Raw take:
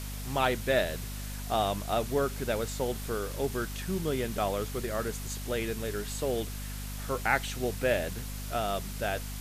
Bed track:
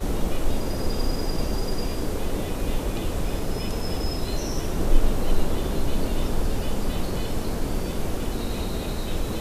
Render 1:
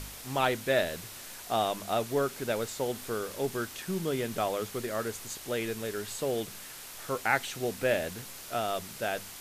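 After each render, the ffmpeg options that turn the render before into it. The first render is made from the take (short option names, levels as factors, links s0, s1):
-af "bandreject=f=50:t=h:w=4,bandreject=f=100:t=h:w=4,bandreject=f=150:t=h:w=4,bandreject=f=200:t=h:w=4,bandreject=f=250:t=h:w=4"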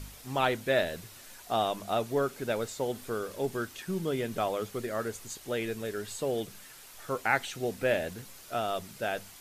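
-af "afftdn=nr=7:nf=-45"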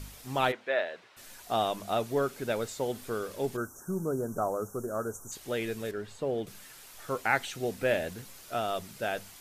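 -filter_complex "[0:a]asplit=3[s0][s1][s2];[s0]afade=t=out:st=0.51:d=0.02[s3];[s1]highpass=550,lowpass=2600,afade=t=in:st=0.51:d=0.02,afade=t=out:st=1.16:d=0.02[s4];[s2]afade=t=in:st=1.16:d=0.02[s5];[s3][s4][s5]amix=inputs=3:normalize=0,asplit=3[s6][s7][s8];[s6]afade=t=out:st=3.56:d=0.02[s9];[s7]asuperstop=centerf=3000:order=20:qfactor=0.73,afade=t=in:st=3.56:d=0.02,afade=t=out:st=5.31:d=0.02[s10];[s8]afade=t=in:st=5.31:d=0.02[s11];[s9][s10][s11]amix=inputs=3:normalize=0,asettb=1/sr,asplit=3[s12][s13][s14];[s12]atrim=end=5.914[s15];[s13]atrim=start=5.91:end=6.47,asetpts=PTS-STARTPTS,afade=t=in:d=0.004:c=qsin,afade=t=out:st=0.556:d=0.004:c=qsin,lowpass=f=1600:p=1[s16];[s14]atrim=start=6.466[s17];[s15][s16]acrossfade=d=0.004:c1=hsin:c2=qsin[s18];[s18][s17]acrossfade=d=0.004:c1=qsin:c2=hsin"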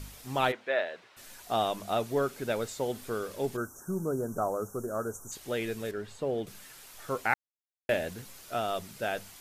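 -filter_complex "[0:a]asplit=3[s0][s1][s2];[s0]atrim=end=7.34,asetpts=PTS-STARTPTS,afade=t=out:st=7.336:d=0.004:c=hsin[s3];[s1]atrim=start=7.34:end=7.89,asetpts=PTS-STARTPTS,volume=0[s4];[s2]atrim=start=7.89,asetpts=PTS-STARTPTS,afade=t=in:d=0.004:c=hsin[s5];[s3][s4][s5]concat=n=3:v=0:a=1"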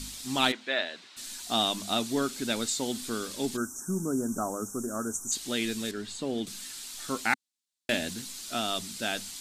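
-af "equalizer=f=125:t=o:w=1:g=-6,equalizer=f=250:t=o:w=1:g=11,equalizer=f=500:t=o:w=1:g=-8,equalizer=f=4000:t=o:w=1:g=11,equalizer=f=8000:t=o:w=1:g=11"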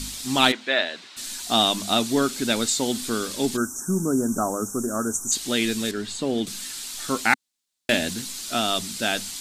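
-af "volume=2.24"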